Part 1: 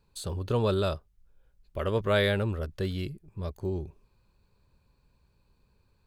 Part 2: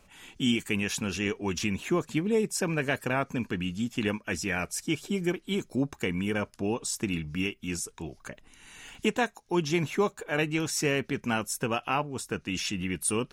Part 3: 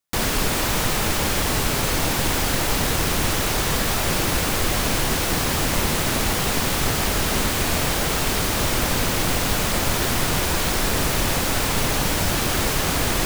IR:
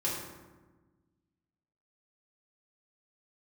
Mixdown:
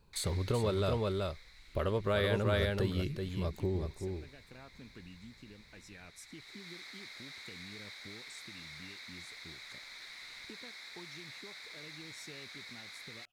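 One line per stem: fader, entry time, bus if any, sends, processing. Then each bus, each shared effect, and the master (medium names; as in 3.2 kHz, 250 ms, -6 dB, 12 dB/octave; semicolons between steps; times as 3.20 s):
+3.0 dB, 0.00 s, bus A, no send, echo send -10.5 dB, none
-14.0 dB, 1.45 s, bus A, no send, no echo send, peaking EQ 100 Hz +5 dB; compression, threshold -34 dBFS, peak gain reduction 13 dB; rotary cabinet horn 0.8 Hz
-15.0 dB, 0.00 s, no bus, no send, no echo send, two resonant band-passes 2.9 kHz, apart 0.85 oct; auto duck -12 dB, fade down 1.70 s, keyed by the first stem
bus A: 0.0 dB, compression 3:1, threshold -31 dBFS, peak gain reduction 10.5 dB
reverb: none
echo: delay 379 ms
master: none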